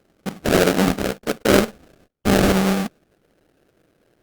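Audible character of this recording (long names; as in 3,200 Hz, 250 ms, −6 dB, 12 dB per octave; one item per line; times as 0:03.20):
aliases and images of a low sample rate 1,000 Hz, jitter 20%
Opus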